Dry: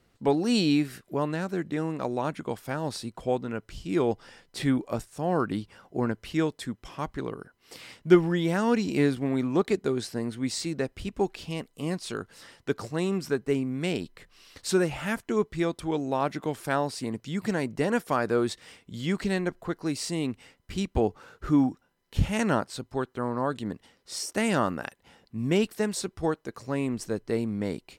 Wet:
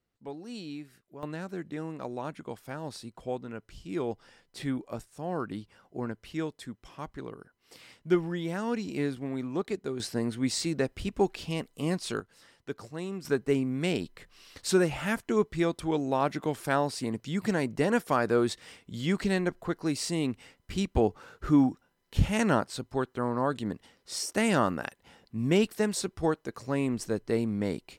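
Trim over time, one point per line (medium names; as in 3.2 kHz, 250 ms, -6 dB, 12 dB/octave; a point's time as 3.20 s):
-17 dB
from 1.23 s -7 dB
from 10.00 s +1 dB
from 12.20 s -8.5 dB
from 13.25 s 0 dB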